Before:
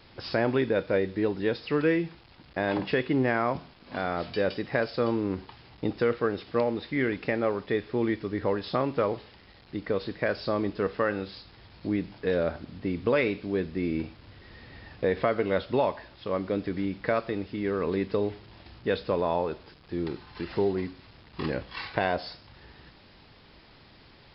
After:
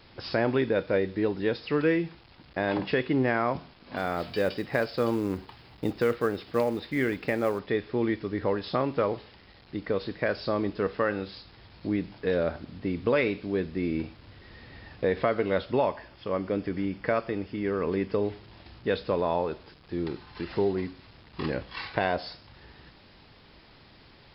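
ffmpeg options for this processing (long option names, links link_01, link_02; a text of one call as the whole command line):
ffmpeg -i in.wav -filter_complex "[0:a]asplit=3[link_01][link_02][link_03];[link_01]afade=type=out:start_time=3.96:duration=0.02[link_04];[link_02]acrusher=bits=7:mode=log:mix=0:aa=0.000001,afade=type=in:start_time=3.96:duration=0.02,afade=type=out:start_time=7.58:duration=0.02[link_05];[link_03]afade=type=in:start_time=7.58:duration=0.02[link_06];[link_04][link_05][link_06]amix=inputs=3:normalize=0,asettb=1/sr,asplit=3[link_07][link_08][link_09];[link_07]atrim=end=15.714[link_10];[link_08]atrim=start=15.71:end=18.25,asetpts=PTS-STARTPTS,afade=type=in:duration=0.004:curve=qsin,afade=type=out:start_time=2.536:duration=0.004:curve=qsin,bandreject=frequency=3900:width=5.3[link_11];[link_09]atrim=start=18.246[link_12];[link_10][link_11]acrossfade=duration=0.004:curve1=hsin:curve2=qsin[link_13];[link_13][link_12]acrossfade=duration=0.004:curve1=qsin:curve2=hsin" out.wav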